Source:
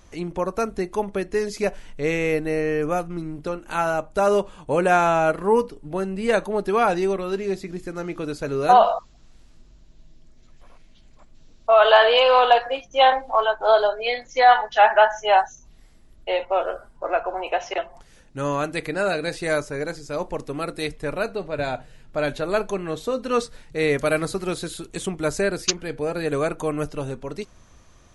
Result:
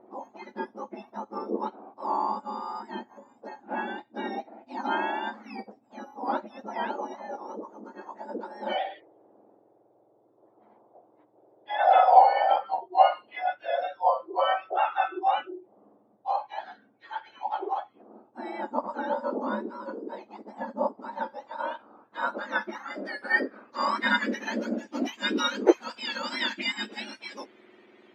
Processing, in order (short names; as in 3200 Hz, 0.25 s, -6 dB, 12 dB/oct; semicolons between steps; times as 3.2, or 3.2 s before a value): spectrum mirrored in octaves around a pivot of 1500 Hz; low-pass sweep 790 Hz -> 2700 Hz, 20.94–24.92